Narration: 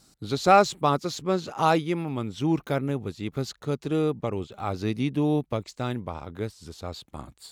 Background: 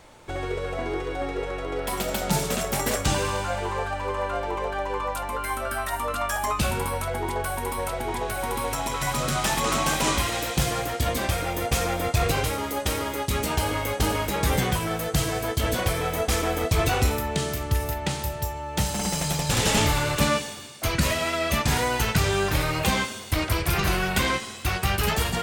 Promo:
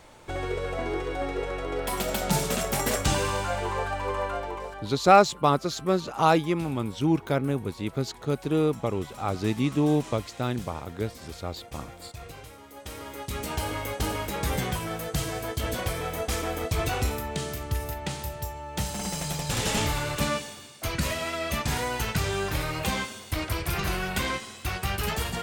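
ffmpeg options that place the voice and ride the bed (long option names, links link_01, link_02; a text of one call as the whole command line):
ffmpeg -i stem1.wav -i stem2.wav -filter_complex "[0:a]adelay=4600,volume=1dB[link_01];[1:a]volume=13.5dB,afade=type=out:start_time=4.17:duration=0.76:silence=0.11885,afade=type=in:start_time=12.68:duration=0.96:silence=0.188365[link_02];[link_01][link_02]amix=inputs=2:normalize=0" out.wav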